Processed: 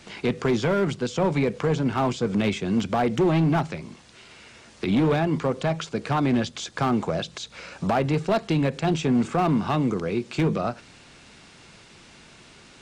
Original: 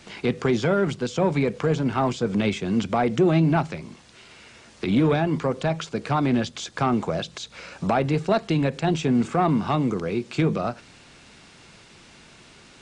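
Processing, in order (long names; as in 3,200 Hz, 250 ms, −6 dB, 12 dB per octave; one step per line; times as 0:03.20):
hard clipping −16 dBFS, distortion −17 dB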